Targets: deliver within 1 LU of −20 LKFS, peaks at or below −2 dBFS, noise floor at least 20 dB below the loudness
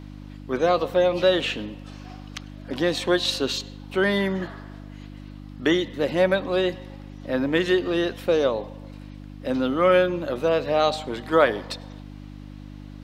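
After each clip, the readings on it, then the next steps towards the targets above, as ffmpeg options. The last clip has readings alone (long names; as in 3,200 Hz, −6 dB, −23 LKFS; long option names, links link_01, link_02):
mains hum 50 Hz; hum harmonics up to 300 Hz; level of the hum −37 dBFS; integrated loudness −23.0 LKFS; sample peak −3.0 dBFS; target loudness −20.0 LKFS
→ -af "bandreject=frequency=50:width_type=h:width=4,bandreject=frequency=100:width_type=h:width=4,bandreject=frequency=150:width_type=h:width=4,bandreject=frequency=200:width_type=h:width=4,bandreject=frequency=250:width_type=h:width=4,bandreject=frequency=300:width_type=h:width=4"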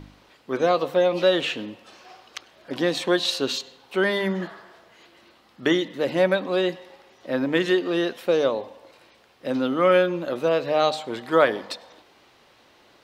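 mains hum none found; integrated loudness −23.0 LKFS; sample peak −3.5 dBFS; target loudness −20.0 LKFS
→ -af "volume=3dB,alimiter=limit=-2dB:level=0:latency=1"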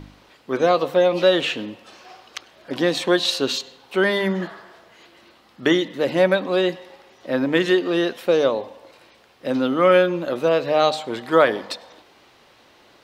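integrated loudness −20.5 LKFS; sample peak −2.0 dBFS; background noise floor −54 dBFS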